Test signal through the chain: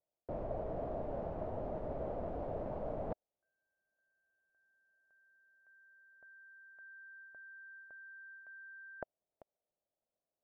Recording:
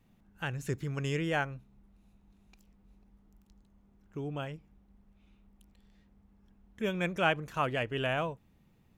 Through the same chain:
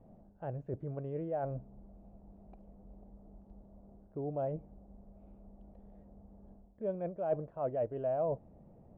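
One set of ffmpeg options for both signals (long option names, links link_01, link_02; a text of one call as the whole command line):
ffmpeg -i in.wav -af "areverse,acompressor=threshold=-44dB:ratio=12,areverse,lowpass=frequency=630:width_type=q:width=4.5,volume=6.5dB" out.wav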